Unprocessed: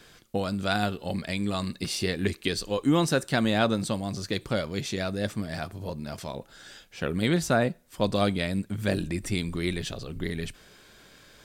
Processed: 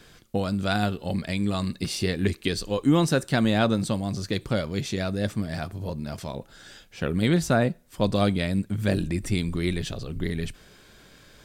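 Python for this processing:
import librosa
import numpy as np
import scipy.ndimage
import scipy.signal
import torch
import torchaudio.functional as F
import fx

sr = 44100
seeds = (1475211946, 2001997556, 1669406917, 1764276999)

y = fx.low_shelf(x, sr, hz=260.0, db=5.5)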